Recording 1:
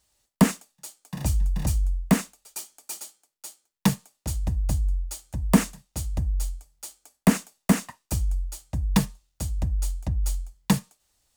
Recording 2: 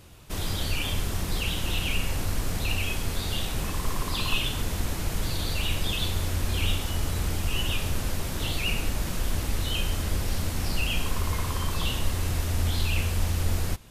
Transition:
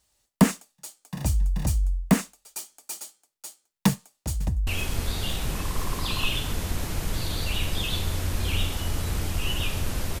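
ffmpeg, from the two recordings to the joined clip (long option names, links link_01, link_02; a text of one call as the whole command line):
ffmpeg -i cue0.wav -i cue1.wav -filter_complex "[0:a]apad=whole_dur=10.2,atrim=end=10.2,atrim=end=4.672[link_01];[1:a]atrim=start=2.758:end=8.29[link_02];[link_01][link_02]acrossfade=duration=0.004:curve1=hsin:curve2=hsin,asplit=2[link_03][link_04];[link_04]afade=type=in:start_time=3.89:duration=0.01,afade=type=out:start_time=4.67:duration=0.01,aecho=0:1:510|1020|1530|2040|2550|3060|3570|4080|4590|5100|5610|6120:0.298538|0.238831|0.191064|0.152852|0.122281|0.097825|0.07826|0.062608|0.0500864|0.0400691|0.0320553|0.0256442[link_05];[link_03][link_05]amix=inputs=2:normalize=0" out.wav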